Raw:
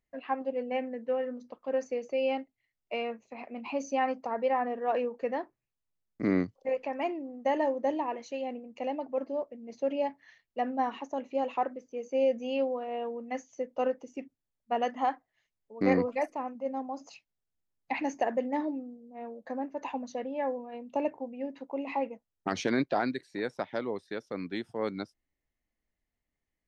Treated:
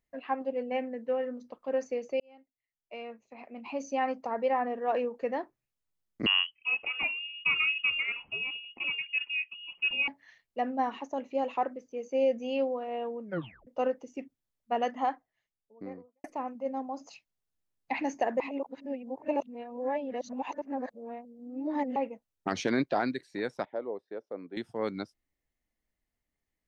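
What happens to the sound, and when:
2.20–4.28 s: fade in
6.26–10.08 s: frequency inversion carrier 3.1 kHz
13.22 s: tape stop 0.45 s
14.83–16.24 s: studio fade out
18.40–21.96 s: reverse
23.65–24.57 s: band-pass filter 550 Hz, Q 1.4

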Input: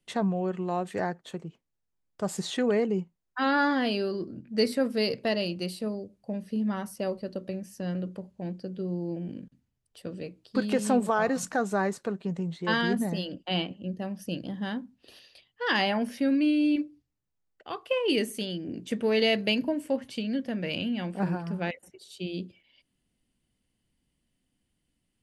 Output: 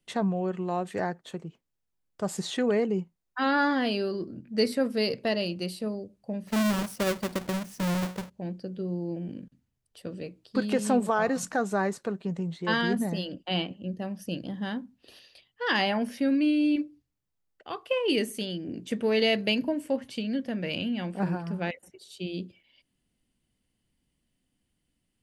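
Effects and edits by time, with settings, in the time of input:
6.47–8.30 s: square wave that keeps the level

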